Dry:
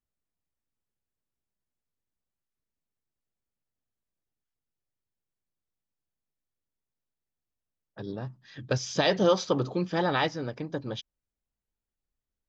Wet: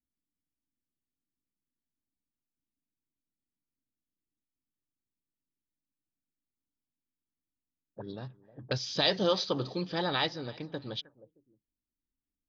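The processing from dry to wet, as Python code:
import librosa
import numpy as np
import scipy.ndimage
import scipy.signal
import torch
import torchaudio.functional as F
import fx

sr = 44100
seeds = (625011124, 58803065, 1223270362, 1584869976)

y = fx.echo_feedback(x, sr, ms=311, feedback_pct=27, wet_db=-23.0)
y = fx.envelope_lowpass(y, sr, base_hz=280.0, top_hz=4300.0, q=4.0, full_db=-31.5, direction='up')
y = F.gain(torch.from_numpy(y), -5.5).numpy()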